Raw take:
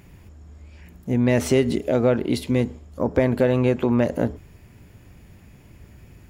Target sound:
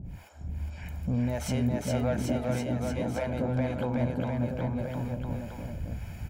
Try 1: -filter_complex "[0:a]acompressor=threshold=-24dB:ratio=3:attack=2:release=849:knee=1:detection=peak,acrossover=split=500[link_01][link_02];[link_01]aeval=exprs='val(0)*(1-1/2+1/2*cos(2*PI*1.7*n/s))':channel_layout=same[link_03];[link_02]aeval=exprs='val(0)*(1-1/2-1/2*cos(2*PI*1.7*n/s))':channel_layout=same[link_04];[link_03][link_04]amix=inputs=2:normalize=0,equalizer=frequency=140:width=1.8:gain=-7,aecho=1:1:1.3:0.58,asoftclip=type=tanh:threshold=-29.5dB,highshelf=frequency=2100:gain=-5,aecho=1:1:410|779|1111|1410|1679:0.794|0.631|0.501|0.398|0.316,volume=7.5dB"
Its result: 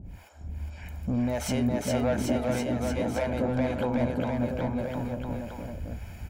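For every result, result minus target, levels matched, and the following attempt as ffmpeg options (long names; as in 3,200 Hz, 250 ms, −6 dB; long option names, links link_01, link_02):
downward compressor: peak gain reduction −4.5 dB; 125 Hz band −3.5 dB
-filter_complex "[0:a]acompressor=threshold=-30.5dB:ratio=3:attack=2:release=849:knee=1:detection=peak,acrossover=split=500[link_01][link_02];[link_01]aeval=exprs='val(0)*(1-1/2+1/2*cos(2*PI*1.7*n/s))':channel_layout=same[link_03];[link_02]aeval=exprs='val(0)*(1-1/2-1/2*cos(2*PI*1.7*n/s))':channel_layout=same[link_04];[link_03][link_04]amix=inputs=2:normalize=0,equalizer=frequency=140:width=1.8:gain=-7,aecho=1:1:1.3:0.58,asoftclip=type=tanh:threshold=-29.5dB,highshelf=frequency=2100:gain=-5,aecho=1:1:410|779|1111|1410|1679:0.794|0.631|0.501|0.398|0.316,volume=7.5dB"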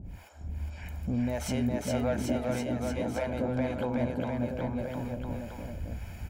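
125 Hz band −3.0 dB
-filter_complex "[0:a]acompressor=threshold=-30.5dB:ratio=3:attack=2:release=849:knee=1:detection=peak,acrossover=split=500[link_01][link_02];[link_01]aeval=exprs='val(0)*(1-1/2+1/2*cos(2*PI*1.7*n/s))':channel_layout=same[link_03];[link_02]aeval=exprs='val(0)*(1-1/2-1/2*cos(2*PI*1.7*n/s))':channel_layout=same[link_04];[link_03][link_04]amix=inputs=2:normalize=0,aecho=1:1:1.3:0.58,asoftclip=type=tanh:threshold=-29.5dB,highshelf=frequency=2100:gain=-5,aecho=1:1:410|779|1111|1410|1679:0.794|0.631|0.501|0.398|0.316,volume=7.5dB"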